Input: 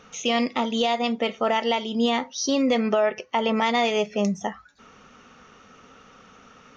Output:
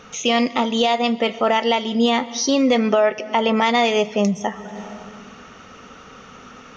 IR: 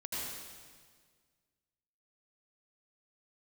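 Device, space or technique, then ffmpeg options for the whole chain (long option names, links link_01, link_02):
ducked reverb: -filter_complex "[0:a]asplit=3[link_01][link_02][link_03];[1:a]atrim=start_sample=2205[link_04];[link_02][link_04]afir=irnorm=-1:irlink=0[link_05];[link_03]apad=whole_len=298453[link_06];[link_05][link_06]sidechaincompress=threshold=-42dB:ratio=10:attack=40:release=280,volume=-3dB[link_07];[link_01][link_07]amix=inputs=2:normalize=0,volume=4.5dB"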